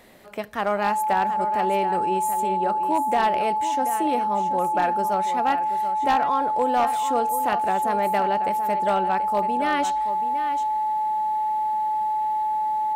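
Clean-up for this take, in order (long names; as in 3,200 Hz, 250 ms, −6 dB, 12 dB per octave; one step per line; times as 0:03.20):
clipped peaks rebuilt −14 dBFS
notch filter 860 Hz, Q 30
echo removal 732 ms −11 dB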